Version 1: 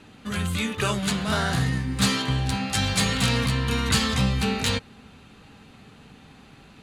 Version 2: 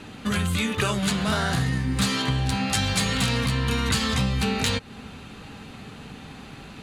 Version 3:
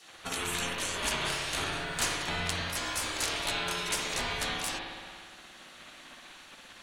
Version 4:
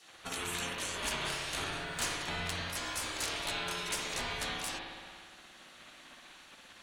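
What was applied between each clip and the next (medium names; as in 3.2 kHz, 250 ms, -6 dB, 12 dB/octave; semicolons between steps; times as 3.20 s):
compression 4:1, threshold -30 dBFS, peak gain reduction 11.5 dB; trim +8 dB
spectral gate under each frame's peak -20 dB weak; frequency shift -350 Hz; spring tank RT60 1.7 s, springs 57 ms, chirp 45 ms, DRR -0.5 dB
one-sided clip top -24 dBFS; trim -4 dB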